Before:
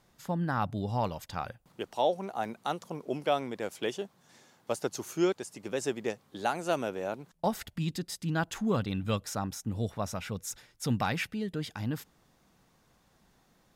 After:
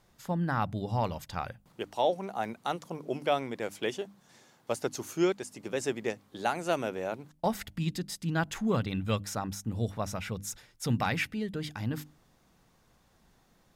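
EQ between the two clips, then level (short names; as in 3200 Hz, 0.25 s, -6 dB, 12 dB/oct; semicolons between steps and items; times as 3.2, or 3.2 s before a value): low shelf 94 Hz +5.5 dB; notches 50/100/150/200/250/300 Hz; dynamic EQ 2100 Hz, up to +4 dB, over -51 dBFS, Q 2.7; 0.0 dB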